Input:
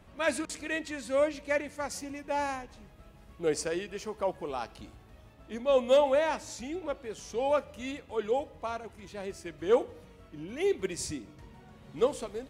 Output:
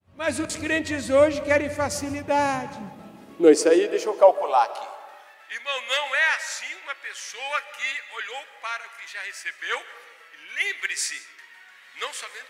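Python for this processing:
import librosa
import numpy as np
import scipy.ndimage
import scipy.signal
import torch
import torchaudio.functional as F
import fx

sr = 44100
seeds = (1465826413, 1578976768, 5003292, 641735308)

y = fx.fade_in_head(x, sr, length_s=0.57)
y = fx.filter_sweep_highpass(y, sr, from_hz=95.0, to_hz=1800.0, start_s=2.12, end_s=5.44, q=3.4)
y = fx.rev_freeverb(y, sr, rt60_s=1.5, hf_ratio=0.35, predelay_ms=105, drr_db=15.0)
y = y * librosa.db_to_amplitude(9.0)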